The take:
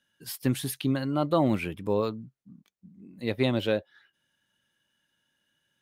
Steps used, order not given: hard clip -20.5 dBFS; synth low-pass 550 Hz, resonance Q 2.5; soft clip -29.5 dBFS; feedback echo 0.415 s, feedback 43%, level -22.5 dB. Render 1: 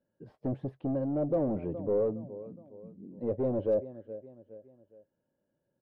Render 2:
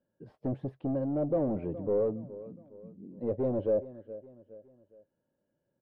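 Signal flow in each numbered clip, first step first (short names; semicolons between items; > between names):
feedback echo > soft clip > synth low-pass > hard clip; hard clip > feedback echo > soft clip > synth low-pass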